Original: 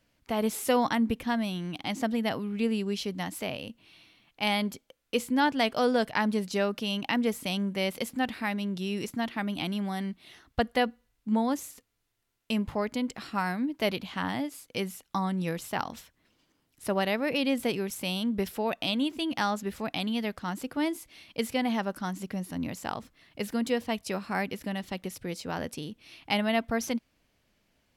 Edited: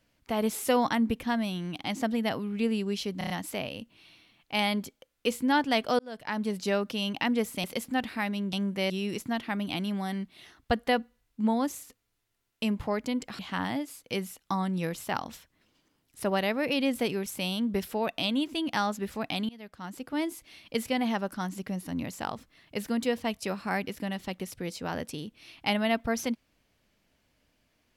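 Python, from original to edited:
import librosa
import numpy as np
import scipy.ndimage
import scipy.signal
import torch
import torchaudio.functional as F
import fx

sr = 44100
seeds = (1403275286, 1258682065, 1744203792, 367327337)

y = fx.edit(x, sr, fx.stutter(start_s=3.18, slice_s=0.03, count=5),
    fx.fade_in_span(start_s=5.87, length_s=0.63),
    fx.move(start_s=7.52, length_s=0.37, to_s=8.78),
    fx.cut(start_s=13.27, length_s=0.76),
    fx.fade_in_from(start_s=20.13, length_s=0.86, floor_db=-23.0), tone=tone)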